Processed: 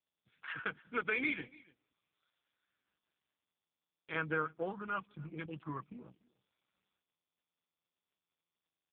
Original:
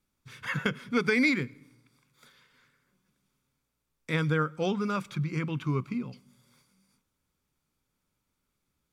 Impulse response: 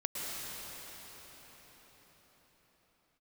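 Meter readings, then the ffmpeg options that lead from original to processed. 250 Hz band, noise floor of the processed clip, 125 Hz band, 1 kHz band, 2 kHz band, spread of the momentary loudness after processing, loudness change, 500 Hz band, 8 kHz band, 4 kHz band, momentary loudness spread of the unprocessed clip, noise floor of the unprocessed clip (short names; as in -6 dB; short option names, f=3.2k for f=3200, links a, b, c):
-14.5 dB, under -85 dBFS, -17.5 dB, -5.0 dB, -6.5 dB, 16 LU, -9.0 dB, -9.5 dB, under -25 dB, -12.5 dB, 12 LU, -81 dBFS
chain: -af "afwtdn=0.0141,highpass=f=1.2k:p=1,bandreject=f=2k:w=5,aecho=1:1:6.2:0.43,aecho=1:1:291:0.0668" -ar 8000 -c:a libopencore_amrnb -b:a 5150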